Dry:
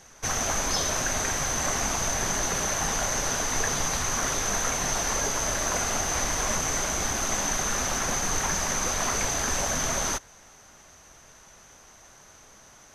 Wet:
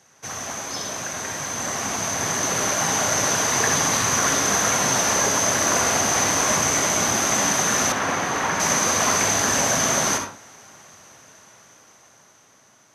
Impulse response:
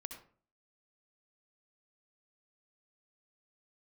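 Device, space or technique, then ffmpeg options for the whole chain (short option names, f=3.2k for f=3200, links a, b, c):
far laptop microphone: -filter_complex "[1:a]atrim=start_sample=2205[a];[0:a][a]afir=irnorm=-1:irlink=0,highpass=f=100:w=0.5412,highpass=f=100:w=1.3066,dynaudnorm=f=650:g=7:m=11dB,asettb=1/sr,asplit=3[b][c][d];[b]atrim=end=7.924[e];[c]atrim=start=7.92:end=8.6,asetpts=PTS-STARTPTS,afade=t=in:d=0.004:c=qsin,afade=t=out:st=0.676:d=0.004:c=qsin,bass=f=250:g=-5,treble=f=4k:g=-12[f];[d]atrim=start=8.596[g];[e][f]acrossfade=d=0.004:c1=hsin:c2=qsin[h];[h][g]acrossfade=d=0.004:c1=qsin:c2=hsin"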